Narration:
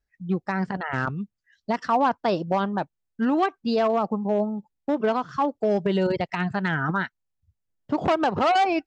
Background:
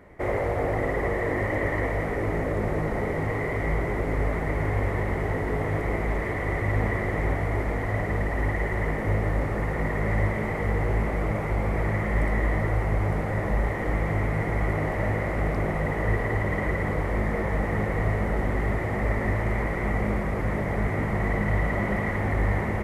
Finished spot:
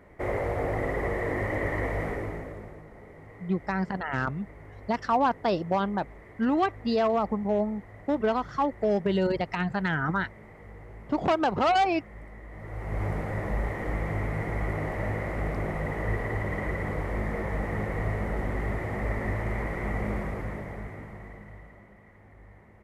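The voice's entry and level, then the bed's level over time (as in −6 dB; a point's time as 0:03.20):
3.20 s, −2.5 dB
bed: 0:02.09 −3 dB
0:02.85 −21 dB
0:12.47 −21 dB
0:13.02 −4.5 dB
0:20.23 −4.5 dB
0:21.94 −28 dB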